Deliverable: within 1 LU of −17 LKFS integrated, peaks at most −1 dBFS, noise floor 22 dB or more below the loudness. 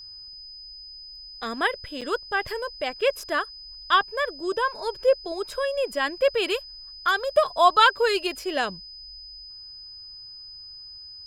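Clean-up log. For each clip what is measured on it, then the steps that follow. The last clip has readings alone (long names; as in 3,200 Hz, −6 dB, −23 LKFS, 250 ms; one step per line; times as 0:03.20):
number of dropouts 1; longest dropout 5.9 ms; interfering tone 5,000 Hz; level of the tone −40 dBFS; integrated loudness −24.5 LKFS; sample peak −6.0 dBFS; target loudness −17.0 LKFS
→ repair the gap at 0:02.01, 5.9 ms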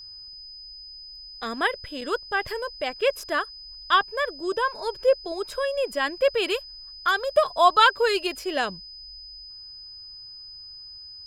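number of dropouts 0; interfering tone 5,000 Hz; level of the tone −40 dBFS
→ notch filter 5,000 Hz, Q 30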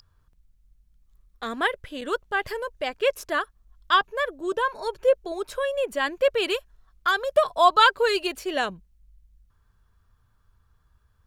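interfering tone none found; integrated loudness −24.5 LKFS; sample peak −6.0 dBFS; target loudness −17.0 LKFS
→ level +7.5 dB
brickwall limiter −1 dBFS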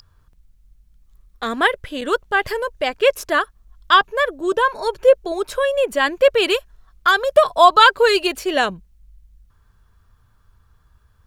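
integrated loudness −17.5 LKFS; sample peak −1.0 dBFS; background noise floor −58 dBFS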